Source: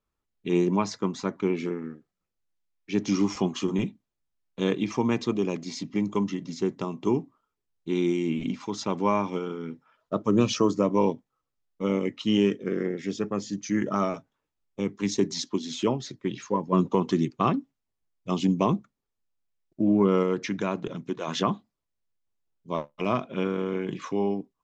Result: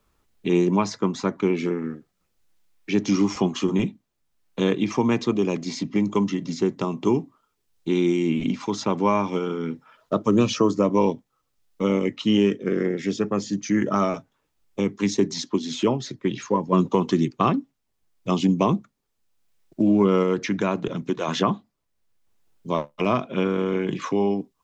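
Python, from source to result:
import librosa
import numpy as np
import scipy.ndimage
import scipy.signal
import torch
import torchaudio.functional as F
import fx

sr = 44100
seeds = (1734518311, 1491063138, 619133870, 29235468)

y = fx.band_squash(x, sr, depth_pct=40)
y = y * 10.0 ** (4.0 / 20.0)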